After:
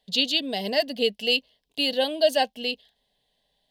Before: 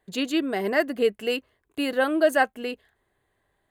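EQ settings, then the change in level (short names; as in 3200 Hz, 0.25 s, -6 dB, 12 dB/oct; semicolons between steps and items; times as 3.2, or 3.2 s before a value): band shelf 4000 Hz +14.5 dB 1.2 oct; fixed phaser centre 350 Hz, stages 6; 0.0 dB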